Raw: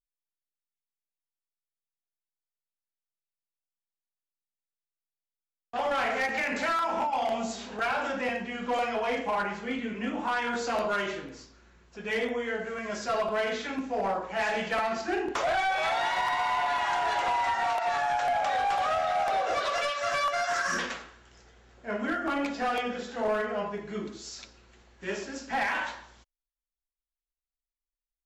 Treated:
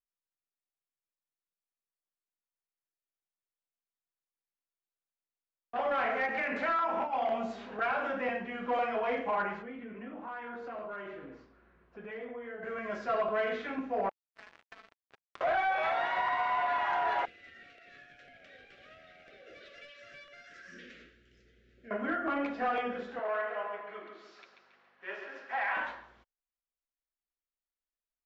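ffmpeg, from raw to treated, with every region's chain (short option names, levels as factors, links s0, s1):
-filter_complex "[0:a]asettb=1/sr,asplit=3[s0][s1][s2];[s0]atrim=end=9.624[s3];[s1]atrim=start=9.62:end=12.63,asetpts=PTS-STARTPTS,afade=t=in:d=0.004:c=qsin,afade=t=out:st=3.006:d=0.004:c=qsin,highshelf=f=3200:g=-11,acompressor=threshold=0.0112:ratio=3:attack=3.2:release=140:knee=1:detection=peak[s4];[s2]atrim=start=12.626[s5];[s3][s4]acrossfade=d=0.004:c1=hsin:c2=qsin[s6];[s6][s5]acrossfade=d=0.004:c1=qsin:c2=hsin,asettb=1/sr,asplit=3[s7][s8][s9];[s7]atrim=end=14.094[s10];[s8]atrim=start=14.09:end=15.41,asetpts=PTS-STARTPTS,afade=t=in:d=0.004:c=qsin,afade=t=out:st=1.316:d=0.004:c=qsin,highpass=1100,acrusher=bits=3:mix=0:aa=0.5,acompressor=threshold=0.00708:ratio=4:attack=3.2:release=140:knee=1:detection=peak[s11];[s9]atrim=start=15.406[s12];[s10][s11]acrossfade=d=0.004:c1=hsin:c2=qsin[s13];[s13][s12]acrossfade=d=0.004:c1=qsin:c2=hsin,asettb=1/sr,asplit=3[s14][s15][s16];[s14]atrim=end=17.254[s17];[s15]atrim=start=17.25:end=21.91,asetpts=PTS-STARTPTS,afade=t=in:d=0.004:c=qsin,afade=t=out:st=4.656:d=0.004:c=qsin,bass=f=250:g=1,treble=f=4000:g=4,acompressor=threshold=0.0126:ratio=6:attack=3.2:release=140:knee=1:detection=peak,asuperstop=centerf=920:order=4:qfactor=0.58[s18];[s16]atrim=start=21.906[s19];[s17][s18]acrossfade=d=0.004:c1=hsin:c2=qsin[s20];[s20][s19]acrossfade=d=0.004:c1=qsin:c2=hsin,asettb=1/sr,asplit=3[s21][s22][s23];[s21]atrim=end=23.194[s24];[s22]atrim=start=23.19:end=25.77,asetpts=PTS-STARTPTS,afade=t=in:d=0.004:c=qsin,afade=t=out:st=2.576:d=0.004:c=qsin,aecho=1:1:138|276|414|552|690:0.447|0.205|0.0945|0.0435|0.02,atrim=end_sample=113778,aeval=exprs='val(0)+0.00447*(sin(2*PI*50*n/s)+sin(2*PI*2*50*n/s)/2+sin(2*PI*3*50*n/s)/3+sin(2*PI*4*50*n/s)/4+sin(2*PI*5*50*n/s)/5)':c=same,highpass=700,lowpass=4300[s25];[s23]atrim=start=25.766[s26];[s24][s25]acrossfade=d=0.004:c1=hsin:c2=qsin[s27];[s27][s26]acrossfade=d=0.004:c1=qsin:c2=hsin,lowpass=2100,lowshelf=f=170:g=-9,bandreject=f=880:w=12,volume=0.891"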